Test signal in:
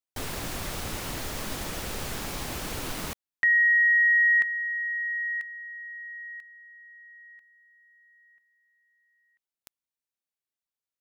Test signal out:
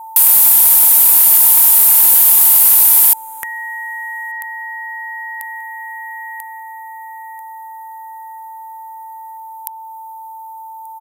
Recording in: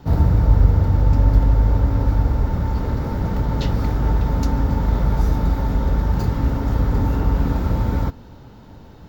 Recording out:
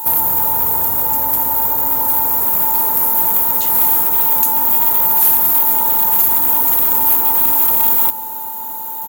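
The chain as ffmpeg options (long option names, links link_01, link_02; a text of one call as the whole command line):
ffmpeg -i in.wav -filter_complex "[0:a]highpass=frequency=410:poles=1,aemphasis=mode=production:type=bsi,asplit=2[link_01][link_02];[link_02]adelay=1183,lowpass=frequency=1800:poles=1,volume=-21.5dB,asplit=2[link_03][link_04];[link_04]adelay=1183,lowpass=frequency=1800:poles=1,volume=0.22[link_05];[link_03][link_05]amix=inputs=2:normalize=0[link_06];[link_01][link_06]amix=inputs=2:normalize=0,alimiter=limit=-16dB:level=0:latency=1:release=272,aresample=32000,aresample=44100,acompressor=threshold=-34dB:ratio=5:attack=5.4:release=45:knee=1:detection=peak,aexciter=amount=8.5:drive=9.7:freq=7700,aeval=exprs='val(0)+0.00631*sin(2*PI*890*n/s)':channel_layout=same,acontrast=87,equalizer=frequency=940:width=6.6:gain=14,volume=-1.5dB" out.wav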